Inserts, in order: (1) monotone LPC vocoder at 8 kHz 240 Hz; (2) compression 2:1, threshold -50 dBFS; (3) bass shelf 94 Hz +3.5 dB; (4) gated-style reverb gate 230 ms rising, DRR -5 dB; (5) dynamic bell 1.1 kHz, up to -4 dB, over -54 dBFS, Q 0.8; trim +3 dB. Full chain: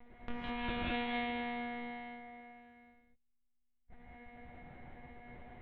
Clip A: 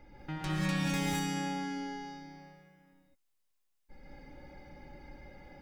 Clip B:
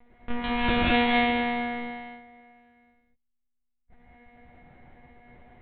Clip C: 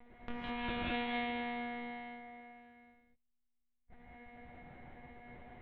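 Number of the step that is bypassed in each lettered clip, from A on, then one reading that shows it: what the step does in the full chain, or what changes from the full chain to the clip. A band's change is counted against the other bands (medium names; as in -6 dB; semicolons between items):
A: 1, 125 Hz band +13.5 dB; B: 2, mean gain reduction 4.0 dB; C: 3, 125 Hz band -1.5 dB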